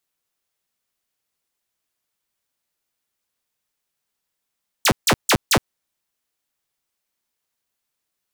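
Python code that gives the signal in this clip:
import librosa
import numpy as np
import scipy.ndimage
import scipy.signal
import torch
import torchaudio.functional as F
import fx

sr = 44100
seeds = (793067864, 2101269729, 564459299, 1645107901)

y = fx.laser_zaps(sr, level_db=-10, start_hz=9300.0, end_hz=81.0, length_s=0.07, wave='saw', shots=4, gap_s=0.15)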